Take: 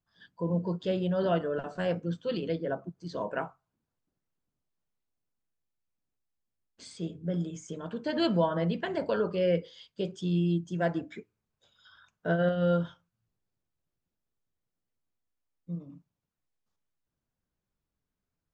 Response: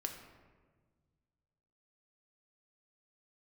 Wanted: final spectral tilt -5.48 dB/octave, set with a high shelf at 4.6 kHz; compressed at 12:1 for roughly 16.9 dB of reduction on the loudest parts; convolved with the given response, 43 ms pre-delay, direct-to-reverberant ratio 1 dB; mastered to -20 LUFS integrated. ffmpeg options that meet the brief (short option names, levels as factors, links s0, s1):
-filter_complex "[0:a]highshelf=f=4600:g=7.5,acompressor=threshold=0.0112:ratio=12,asplit=2[s0][s1];[1:a]atrim=start_sample=2205,adelay=43[s2];[s1][s2]afir=irnorm=-1:irlink=0,volume=1[s3];[s0][s3]amix=inputs=2:normalize=0,volume=11.9"